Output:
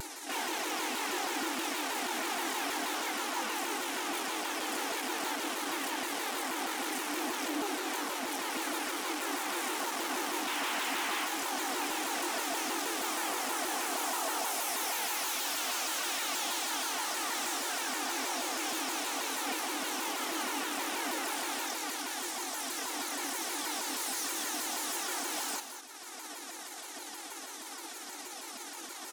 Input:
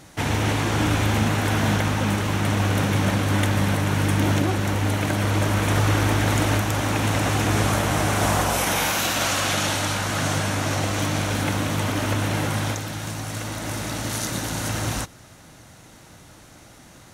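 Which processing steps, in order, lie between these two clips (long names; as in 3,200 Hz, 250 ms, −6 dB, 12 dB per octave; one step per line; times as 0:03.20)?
high-shelf EQ 2,200 Hz +10.5 dB
comb filter 2.4 ms, depth 81%
upward compression, threshold −25 dBFS
time stretch by overlap-add 1.7×, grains 118 ms
sound drawn into the spectrogram noise, 0:10.47–0:11.25, 710–3,500 Hz −17 dBFS
gain into a clipping stage and back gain 24.5 dB
Chebyshev high-pass with heavy ripple 220 Hz, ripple 6 dB
on a send: single-tap delay 210 ms −9.5 dB
on the sum: pitch modulation by a square or saw wave saw down 6.3 Hz, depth 250 cents
level −4 dB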